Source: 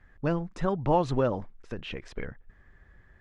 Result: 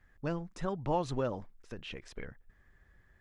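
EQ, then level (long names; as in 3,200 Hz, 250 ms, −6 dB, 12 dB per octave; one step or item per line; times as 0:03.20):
high-shelf EQ 5,000 Hz +11.5 dB
−7.5 dB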